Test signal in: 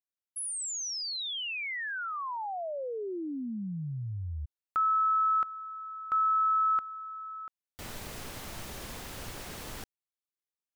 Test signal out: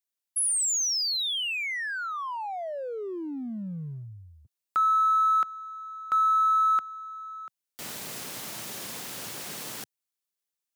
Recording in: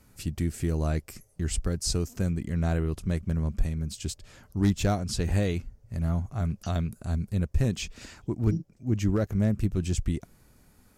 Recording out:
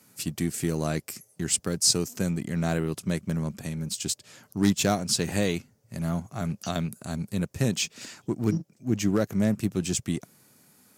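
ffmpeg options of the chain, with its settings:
-filter_complex "[0:a]highpass=f=130:w=0.5412,highpass=f=130:w=1.3066,highshelf=f=3.2k:g=8,asplit=2[a][b];[b]aeval=exprs='sgn(val(0))*max(abs(val(0))-0.0126,0)':c=same,volume=-7dB[c];[a][c]amix=inputs=2:normalize=0"

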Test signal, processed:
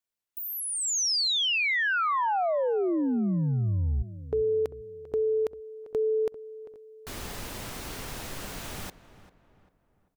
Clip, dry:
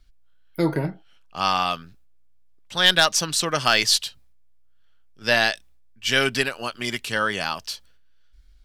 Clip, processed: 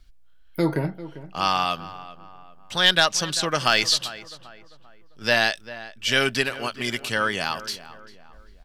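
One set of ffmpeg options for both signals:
-filter_complex "[0:a]asplit=2[a][b];[b]acompressor=threshold=-35dB:ratio=6,volume=-2dB[c];[a][c]amix=inputs=2:normalize=0,asplit=2[d][e];[e]adelay=395,lowpass=f=2k:p=1,volume=-15dB,asplit=2[f][g];[g]adelay=395,lowpass=f=2k:p=1,volume=0.43,asplit=2[h][i];[i]adelay=395,lowpass=f=2k:p=1,volume=0.43,asplit=2[j][k];[k]adelay=395,lowpass=f=2k:p=1,volume=0.43[l];[d][f][h][j][l]amix=inputs=5:normalize=0,acrossover=split=7100[m][n];[n]acompressor=threshold=-34dB:ratio=4:attack=1:release=60[o];[m][o]amix=inputs=2:normalize=0,volume=-1.5dB"

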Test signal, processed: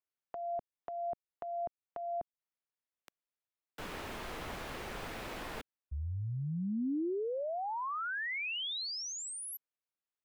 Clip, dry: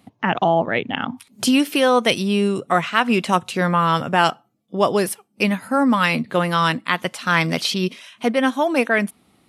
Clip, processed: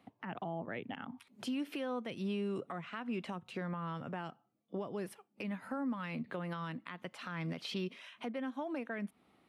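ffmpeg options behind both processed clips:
-filter_complex "[0:a]bass=f=250:g=-7,treble=f=4k:g=-13,acrossover=split=260[a][b];[b]acompressor=threshold=-28dB:ratio=10[c];[a][c]amix=inputs=2:normalize=0,alimiter=limit=-22.5dB:level=0:latency=1:release=201,volume=-7.5dB"

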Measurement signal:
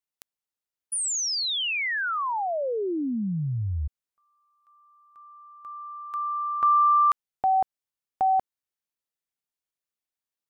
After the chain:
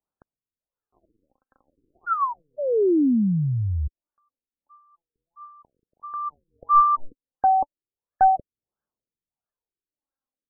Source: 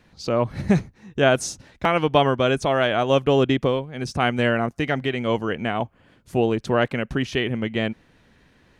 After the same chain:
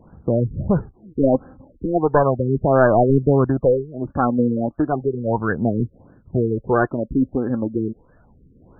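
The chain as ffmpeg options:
-af "aphaser=in_gain=1:out_gain=1:delay=3.8:decay=0.51:speed=0.34:type=sinusoidal,aeval=exprs='clip(val(0),-1,0.15)':c=same,afftfilt=real='re*lt(b*sr/1024,470*pow(1800/470,0.5+0.5*sin(2*PI*1.5*pts/sr)))':imag='im*lt(b*sr/1024,470*pow(1800/470,0.5+0.5*sin(2*PI*1.5*pts/sr)))':win_size=1024:overlap=0.75,volume=3dB"

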